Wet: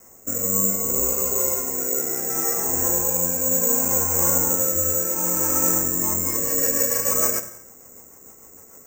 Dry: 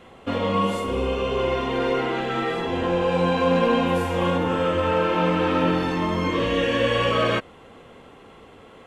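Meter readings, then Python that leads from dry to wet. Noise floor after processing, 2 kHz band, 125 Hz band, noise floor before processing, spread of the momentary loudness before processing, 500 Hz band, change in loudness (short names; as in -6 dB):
-48 dBFS, -9.5 dB, -7.0 dB, -48 dBFS, 5 LU, -7.0 dB, +3.5 dB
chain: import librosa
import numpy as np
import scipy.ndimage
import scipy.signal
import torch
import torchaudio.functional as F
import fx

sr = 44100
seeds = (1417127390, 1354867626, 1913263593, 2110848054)

y = scipy.signal.sosfilt(scipy.signal.butter(6, 2200.0, 'lowpass', fs=sr, output='sos'), x)
y = fx.hum_notches(y, sr, base_hz=60, count=3)
y = fx.rotary_switch(y, sr, hz=0.65, then_hz=6.7, switch_at_s=5.59)
y = fx.rev_gated(y, sr, seeds[0], gate_ms=280, shape='falling', drr_db=9.5)
y = (np.kron(y[::6], np.eye(6)[0]) * 6)[:len(y)]
y = F.gain(torch.from_numpy(y), -5.0).numpy()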